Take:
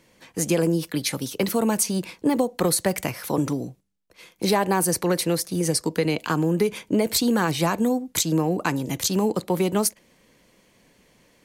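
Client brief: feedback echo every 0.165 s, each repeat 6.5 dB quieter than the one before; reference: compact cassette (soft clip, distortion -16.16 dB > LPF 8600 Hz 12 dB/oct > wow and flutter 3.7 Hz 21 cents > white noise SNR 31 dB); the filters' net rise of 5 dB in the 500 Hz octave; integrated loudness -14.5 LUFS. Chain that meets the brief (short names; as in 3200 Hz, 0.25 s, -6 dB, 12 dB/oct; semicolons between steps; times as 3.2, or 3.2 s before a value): bell 500 Hz +6 dB; feedback echo 0.165 s, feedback 47%, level -6.5 dB; soft clip -12.5 dBFS; LPF 8600 Hz 12 dB/oct; wow and flutter 3.7 Hz 21 cents; white noise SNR 31 dB; gain +8 dB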